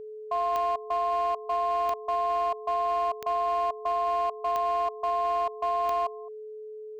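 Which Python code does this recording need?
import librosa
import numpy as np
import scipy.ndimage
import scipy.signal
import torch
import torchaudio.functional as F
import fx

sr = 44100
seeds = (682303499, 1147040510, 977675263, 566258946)

y = fx.fix_declip(x, sr, threshold_db=-22.0)
y = fx.fix_declick_ar(y, sr, threshold=10.0)
y = fx.notch(y, sr, hz=430.0, q=30.0)
y = fx.fix_echo_inverse(y, sr, delay_ms=214, level_db=-21.0)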